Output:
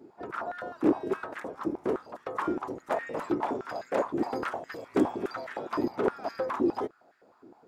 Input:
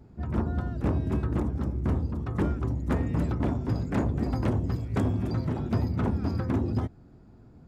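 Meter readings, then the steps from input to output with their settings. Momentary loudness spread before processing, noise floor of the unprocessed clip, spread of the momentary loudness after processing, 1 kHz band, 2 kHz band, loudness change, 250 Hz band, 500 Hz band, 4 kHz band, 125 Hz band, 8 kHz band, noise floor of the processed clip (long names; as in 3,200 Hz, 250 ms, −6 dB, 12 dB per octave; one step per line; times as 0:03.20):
3 LU, −53 dBFS, 9 LU, +5.5 dB, +4.5 dB, −3.0 dB, −2.5 dB, +5.0 dB, +0.5 dB, −22.0 dB, can't be measured, −62 dBFS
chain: high-pass on a step sequencer 9.7 Hz 330–1,700 Hz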